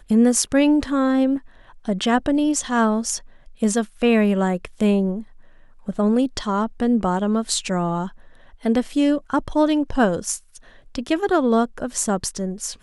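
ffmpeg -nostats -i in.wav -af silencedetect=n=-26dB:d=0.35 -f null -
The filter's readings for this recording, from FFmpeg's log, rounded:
silence_start: 1.38
silence_end: 1.88 | silence_duration: 0.50
silence_start: 3.17
silence_end: 3.62 | silence_duration: 0.45
silence_start: 5.21
silence_end: 5.88 | silence_duration: 0.68
silence_start: 8.08
silence_end: 8.65 | silence_duration: 0.57
silence_start: 10.37
silence_end: 10.95 | silence_duration: 0.59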